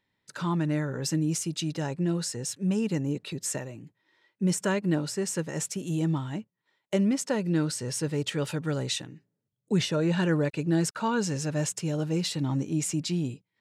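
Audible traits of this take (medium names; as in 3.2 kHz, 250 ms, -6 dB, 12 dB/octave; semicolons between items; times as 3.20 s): noise floor -83 dBFS; spectral tilt -5.0 dB/octave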